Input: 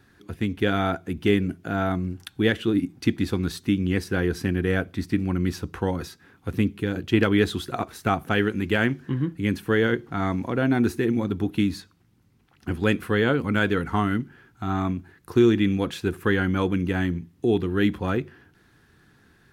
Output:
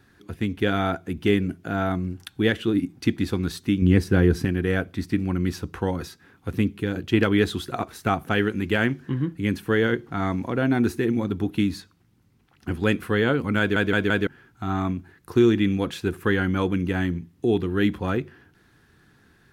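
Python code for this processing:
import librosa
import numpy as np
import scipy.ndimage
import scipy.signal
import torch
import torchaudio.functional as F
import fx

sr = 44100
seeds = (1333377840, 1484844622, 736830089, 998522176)

y = fx.low_shelf(x, sr, hz=390.0, db=9.0, at=(3.82, 4.45))
y = fx.edit(y, sr, fx.stutter_over(start_s=13.59, slice_s=0.17, count=4), tone=tone)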